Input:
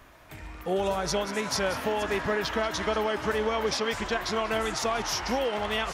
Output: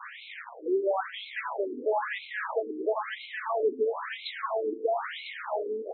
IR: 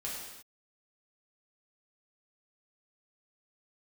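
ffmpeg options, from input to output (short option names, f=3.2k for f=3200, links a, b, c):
-filter_complex "[0:a]aeval=exprs='val(0)+0.5*0.0251*sgn(val(0))':c=same,equalizer=f=86:w=0.95:g=11.5,asplit=2[a][b];[1:a]atrim=start_sample=2205[c];[b][c]afir=irnorm=-1:irlink=0,volume=-11.5dB[d];[a][d]amix=inputs=2:normalize=0,adynamicequalizer=threshold=0.00562:dfrequency=2700:dqfactor=2.1:tfrequency=2700:tqfactor=2.1:attack=5:release=100:ratio=0.375:range=3:mode=cutabove:tftype=bell,afftfilt=real='re*between(b*sr/1024,320*pow(3000/320,0.5+0.5*sin(2*PI*1*pts/sr))/1.41,320*pow(3000/320,0.5+0.5*sin(2*PI*1*pts/sr))*1.41)':imag='im*between(b*sr/1024,320*pow(3000/320,0.5+0.5*sin(2*PI*1*pts/sr))/1.41,320*pow(3000/320,0.5+0.5*sin(2*PI*1*pts/sr))*1.41)':win_size=1024:overlap=0.75"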